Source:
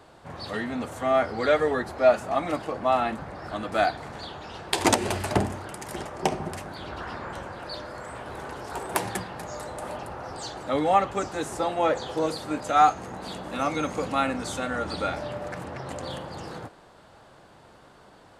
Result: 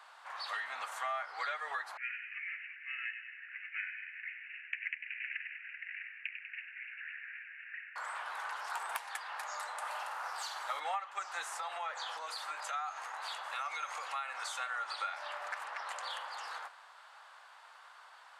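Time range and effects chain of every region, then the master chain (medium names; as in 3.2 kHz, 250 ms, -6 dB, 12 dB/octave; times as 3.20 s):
1.97–7.96 s: careless resampling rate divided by 8×, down none, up filtered + steep high-pass 1.7 kHz 72 dB/octave + feedback echo behind a high-pass 97 ms, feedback 59%, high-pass 2.3 kHz, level -6 dB
9.90–10.80 s: CVSD coder 64 kbps + flutter echo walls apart 8.7 m, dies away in 0.39 s
11.46–14.46 s: high-pass 270 Hz + compression 5:1, threshold -30 dBFS
whole clip: high-pass 1 kHz 24 dB/octave; compression 16:1, threshold -36 dBFS; treble shelf 3.3 kHz -8.5 dB; trim +3.5 dB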